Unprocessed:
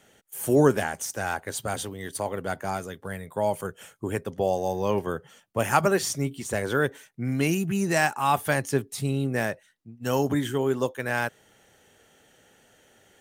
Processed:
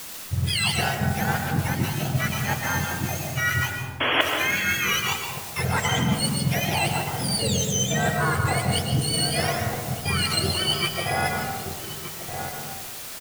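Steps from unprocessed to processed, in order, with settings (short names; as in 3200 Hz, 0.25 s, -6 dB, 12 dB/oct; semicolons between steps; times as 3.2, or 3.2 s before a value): spectrum mirrored in octaves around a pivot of 1100 Hz; limiter -17.5 dBFS, peak gain reduction 7.5 dB; power-law curve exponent 1.4; outdoor echo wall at 210 m, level -11 dB; sample leveller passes 1; in parallel at -3.5 dB: requantised 6-bit, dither triangular; on the sum: painted sound noise, 4–4.21, 240–3400 Hz -3 dBFS; reverse; compressor 16:1, threshold -22 dBFS, peak gain reduction 22.5 dB; reverse; reverb RT60 1.3 s, pre-delay 90 ms, DRR 2.5 dB; gain +2 dB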